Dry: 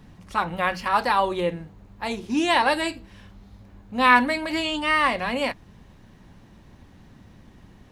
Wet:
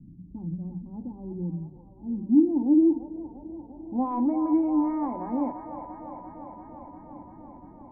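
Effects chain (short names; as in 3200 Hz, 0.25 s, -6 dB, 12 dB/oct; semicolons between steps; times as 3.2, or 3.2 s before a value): low-pass sweep 160 Hz -> 1500 Hz, 1.97–4.61; in parallel at -2 dB: compressor, threshold -32 dBFS, peak gain reduction 22 dB; on the sum: soft clip -11.5 dBFS, distortion -12 dB; vocal tract filter u; notches 50/100/150/200 Hz; band-limited delay 0.345 s, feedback 78%, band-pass 1100 Hz, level -6 dB; gain +5.5 dB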